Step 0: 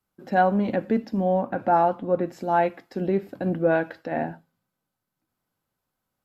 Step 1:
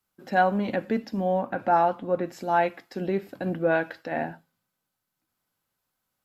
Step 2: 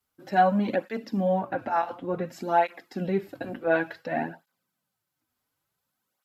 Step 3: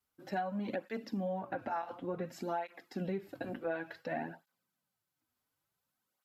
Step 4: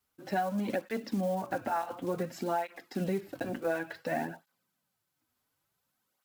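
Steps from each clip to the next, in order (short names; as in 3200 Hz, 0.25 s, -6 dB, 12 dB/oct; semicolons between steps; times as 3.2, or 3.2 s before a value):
tilt shelf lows -4 dB, about 1100 Hz
tape flanging out of phase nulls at 0.56 Hz, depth 6.3 ms; gain +2.5 dB
compressor 8:1, threshold -28 dBFS, peak gain reduction 13 dB; gain -5 dB
block floating point 5-bit; gain +5 dB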